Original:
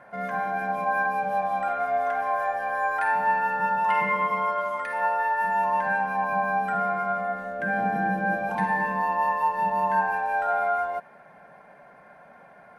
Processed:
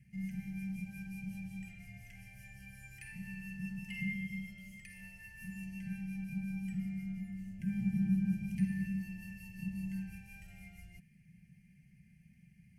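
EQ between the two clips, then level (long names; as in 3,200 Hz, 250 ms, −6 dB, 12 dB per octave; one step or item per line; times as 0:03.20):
inverse Chebyshev band-stop filter 440–1,500 Hz, stop band 50 dB
high-shelf EQ 2,900 Hz −10.5 dB
phaser with its sweep stopped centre 1,000 Hz, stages 6
+9.0 dB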